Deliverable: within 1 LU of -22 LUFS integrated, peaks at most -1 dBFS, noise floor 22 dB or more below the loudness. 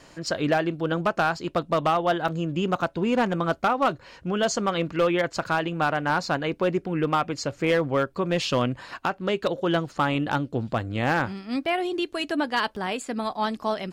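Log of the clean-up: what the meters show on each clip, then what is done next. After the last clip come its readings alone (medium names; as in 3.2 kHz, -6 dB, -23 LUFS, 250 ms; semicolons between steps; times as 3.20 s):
clipped samples 0.9%; clipping level -15.0 dBFS; dropouts 2; longest dropout 4.0 ms; loudness -25.5 LUFS; peak level -15.0 dBFS; loudness target -22.0 LUFS
-> clip repair -15 dBFS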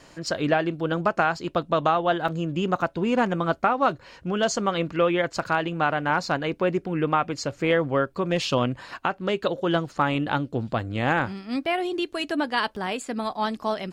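clipped samples 0.0%; dropouts 2; longest dropout 4.0 ms
-> interpolate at 2.28/12.76 s, 4 ms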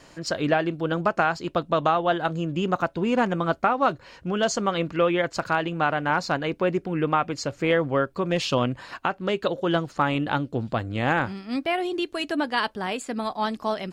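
dropouts 0; loudness -25.5 LUFS; peak level -7.5 dBFS; loudness target -22.0 LUFS
-> trim +3.5 dB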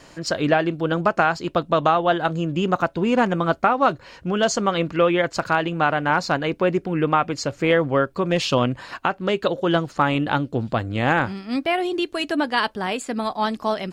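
loudness -22.0 LUFS; peak level -4.0 dBFS; noise floor -49 dBFS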